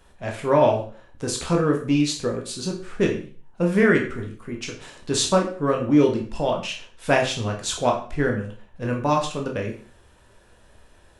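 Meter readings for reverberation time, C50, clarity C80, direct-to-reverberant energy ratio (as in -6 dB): 0.45 s, 8.0 dB, 12.5 dB, 0.5 dB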